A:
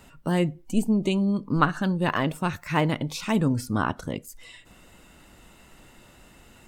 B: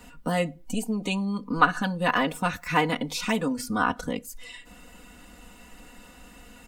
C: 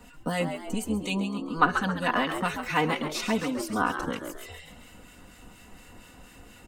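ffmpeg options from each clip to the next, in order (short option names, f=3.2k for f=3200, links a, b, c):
-filter_complex "[0:a]aecho=1:1:4.1:0.99,acrossover=split=460[a][b];[a]acompressor=threshold=-28dB:ratio=6[c];[c][b]amix=inputs=2:normalize=0"
-filter_complex "[0:a]asplit=6[a][b][c][d][e][f];[b]adelay=135,afreqshift=74,volume=-8dB[g];[c]adelay=270,afreqshift=148,volume=-14.6dB[h];[d]adelay=405,afreqshift=222,volume=-21.1dB[i];[e]adelay=540,afreqshift=296,volume=-27.7dB[j];[f]adelay=675,afreqshift=370,volume=-34.2dB[k];[a][g][h][i][j][k]amix=inputs=6:normalize=0,acrossover=split=1300[l][m];[l]aeval=exprs='val(0)*(1-0.5/2+0.5/2*cos(2*PI*4.2*n/s))':c=same[n];[m]aeval=exprs='val(0)*(1-0.5/2-0.5/2*cos(2*PI*4.2*n/s))':c=same[o];[n][o]amix=inputs=2:normalize=0"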